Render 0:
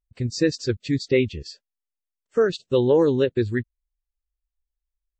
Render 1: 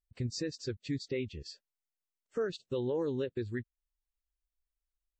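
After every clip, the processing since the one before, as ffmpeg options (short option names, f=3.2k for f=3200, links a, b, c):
-af "alimiter=limit=-19.5dB:level=0:latency=1:release=432,volume=-6dB"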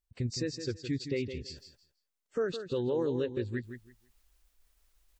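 -af "areverse,acompressor=mode=upward:threshold=-53dB:ratio=2.5,areverse,aecho=1:1:164|328|492:0.335|0.067|0.0134,volume=2dB"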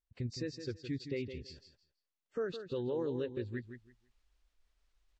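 -af "lowpass=5.1k,volume=-5dB"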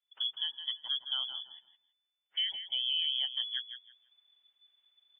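-af "lowpass=f=3k:t=q:w=0.5098,lowpass=f=3k:t=q:w=0.6013,lowpass=f=3k:t=q:w=0.9,lowpass=f=3k:t=q:w=2.563,afreqshift=-3500,aemphasis=mode=production:type=bsi"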